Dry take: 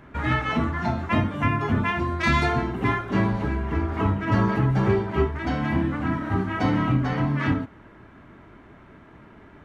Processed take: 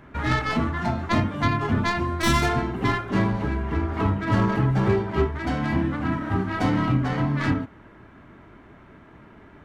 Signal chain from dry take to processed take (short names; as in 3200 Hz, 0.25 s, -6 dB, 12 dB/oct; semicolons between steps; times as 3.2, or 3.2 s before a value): tracing distortion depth 0.16 ms